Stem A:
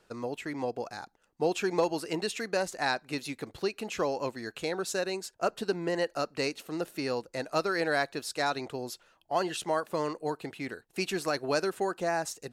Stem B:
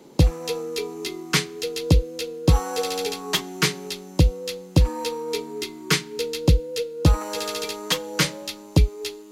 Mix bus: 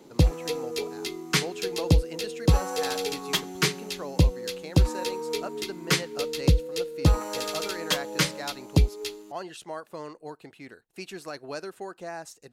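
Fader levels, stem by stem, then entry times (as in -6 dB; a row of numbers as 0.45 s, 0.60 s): -7.5 dB, -3.0 dB; 0.00 s, 0.00 s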